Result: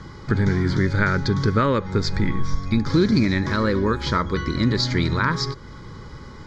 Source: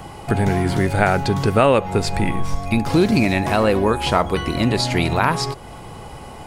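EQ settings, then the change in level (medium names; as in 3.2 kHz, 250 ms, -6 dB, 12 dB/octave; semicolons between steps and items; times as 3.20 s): low-pass 7.8 kHz 24 dB/octave; static phaser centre 2.7 kHz, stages 6; 0.0 dB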